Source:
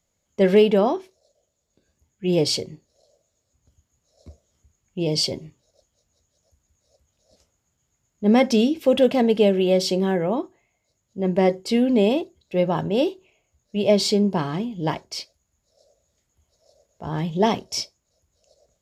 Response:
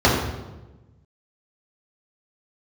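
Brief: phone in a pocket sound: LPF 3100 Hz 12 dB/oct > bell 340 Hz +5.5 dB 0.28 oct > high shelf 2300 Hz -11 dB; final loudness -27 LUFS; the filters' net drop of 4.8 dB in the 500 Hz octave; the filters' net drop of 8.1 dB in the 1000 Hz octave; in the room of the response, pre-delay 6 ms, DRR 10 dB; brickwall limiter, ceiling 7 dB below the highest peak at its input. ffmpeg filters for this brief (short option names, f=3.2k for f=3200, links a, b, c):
-filter_complex "[0:a]equalizer=f=500:t=o:g=-5.5,equalizer=f=1k:t=o:g=-7,alimiter=limit=-16dB:level=0:latency=1,asplit=2[a][b];[1:a]atrim=start_sample=2205,adelay=6[c];[b][c]afir=irnorm=-1:irlink=0,volume=-33.5dB[d];[a][d]amix=inputs=2:normalize=0,lowpass=3.1k,equalizer=f=340:t=o:w=0.28:g=5.5,highshelf=f=2.3k:g=-11,volume=-2dB"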